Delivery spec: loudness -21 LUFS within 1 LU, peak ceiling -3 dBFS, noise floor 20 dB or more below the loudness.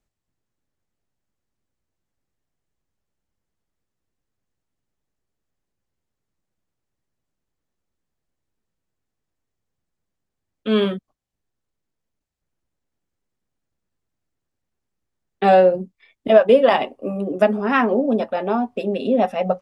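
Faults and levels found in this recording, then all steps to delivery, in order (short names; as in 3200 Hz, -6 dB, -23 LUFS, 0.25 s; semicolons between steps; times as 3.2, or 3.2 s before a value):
loudness -18.5 LUFS; peak -2.0 dBFS; loudness target -21.0 LUFS
-> gain -2.5 dB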